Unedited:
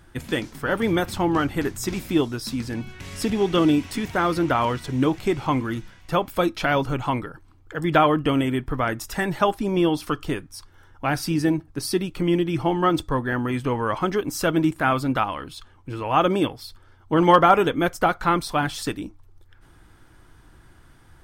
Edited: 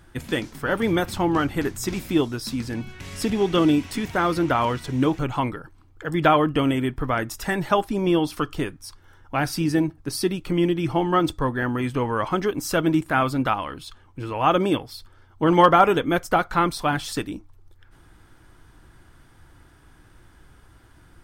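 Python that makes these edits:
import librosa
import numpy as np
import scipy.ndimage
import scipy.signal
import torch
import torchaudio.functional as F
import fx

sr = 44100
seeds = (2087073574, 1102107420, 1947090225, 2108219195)

y = fx.edit(x, sr, fx.cut(start_s=5.19, length_s=1.7), tone=tone)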